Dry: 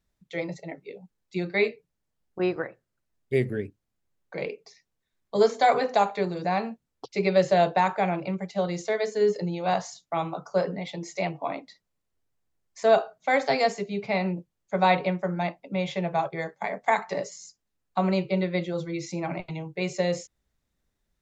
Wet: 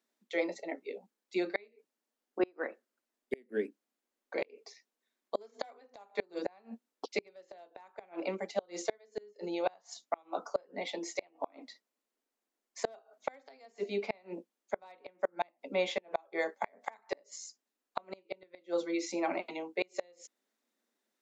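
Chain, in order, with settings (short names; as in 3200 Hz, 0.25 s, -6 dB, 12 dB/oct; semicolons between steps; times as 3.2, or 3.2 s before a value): overloaded stage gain 12 dB; elliptic high-pass 230 Hz, stop band 40 dB; flipped gate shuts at -19 dBFS, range -33 dB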